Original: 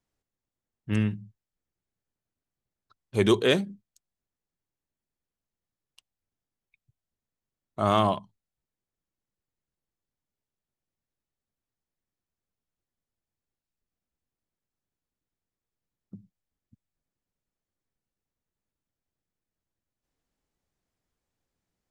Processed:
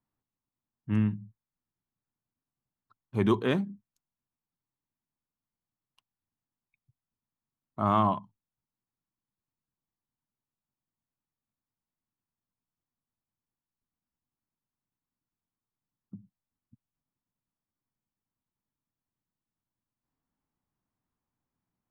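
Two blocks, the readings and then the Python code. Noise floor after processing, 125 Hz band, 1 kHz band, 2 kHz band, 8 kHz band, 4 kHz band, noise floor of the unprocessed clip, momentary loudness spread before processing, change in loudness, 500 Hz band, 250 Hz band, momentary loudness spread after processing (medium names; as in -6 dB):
under -85 dBFS, -1.0 dB, -0.5 dB, -7.0 dB, under -15 dB, -12.0 dB, under -85 dBFS, 16 LU, -3.0 dB, -6.0 dB, -1.0 dB, 14 LU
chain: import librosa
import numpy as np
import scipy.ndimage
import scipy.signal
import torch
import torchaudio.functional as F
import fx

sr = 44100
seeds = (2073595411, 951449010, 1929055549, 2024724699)

y = fx.graphic_eq_10(x, sr, hz=(125, 250, 500, 1000, 4000, 8000), db=(7, 8, -4, 10, -4, -10))
y = y * 10.0 ** (-8.0 / 20.0)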